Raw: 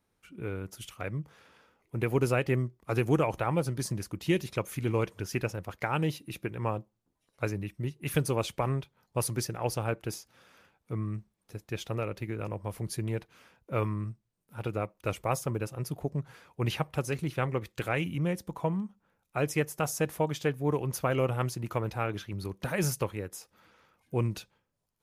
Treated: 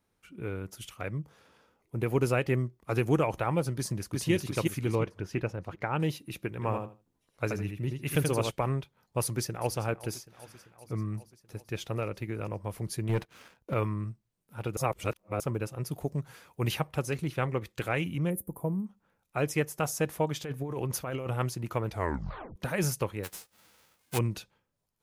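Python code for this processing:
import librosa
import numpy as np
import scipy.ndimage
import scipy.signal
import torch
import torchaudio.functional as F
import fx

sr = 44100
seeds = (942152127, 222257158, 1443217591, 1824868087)

y = fx.peak_eq(x, sr, hz=2100.0, db=-5.0, octaves=1.6, at=(1.18, 2.06))
y = fx.echo_throw(y, sr, start_s=3.77, length_s=0.54, ms=360, feedback_pct=45, wet_db=-1.0)
y = fx.lowpass(y, sr, hz=1900.0, slope=6, at=(4.95, 6.0))
y = fx.echo_feedback(y, sr, ms=80, feedback_pct=18, wet_db=-4.5, at=(6.51, 8.51))
y = fx.echo_throw(y, sr, start_s=9.22, length_s=0.55, ms=390, feedback_pct=70, wet_db=-16.5)
y = fx.leveller(y, sr, passes=2, at=(13.09, 13.74))
y = fx.high_shelf(y, sr, hz=fx.line((15.91, 4400.0), (16.79, 8700.0)), db=10.5, at=(15.91, 16.79), fade=0.02)
y = fx.curve_eq(y, sr, hz=(390.0, 5200.0, 11000.0), db=(0, -25, 14), at=(18.29, 18.85), fade=0.02)
y = fx.over_compress(y, sr, threshold_db=-32.0, ratio=-1.0, at=(20.35, 21.26), fade=0.02)
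y = fx.envelope_flatten(y, sr, power=0.3, at=(23.23, 24.17), fade=0.02)
y = fx.edit(y, sr, fx.reverse_span(start_s=14.77, length_s=0.63),
    fx.tape_stop(start_s=21.89, length_s=0.67), tone=tone)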